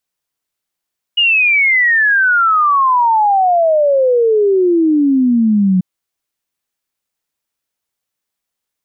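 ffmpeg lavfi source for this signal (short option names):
-f lavfi -i "aevalsrc='0.376*clip(min(t,4.64-t)/0.01,0,1)*sin(2*PI*2900*4.64/log(180/2900)*(exp(log(180/2900)*t/4.64)-1))':d=4.64:s=44100"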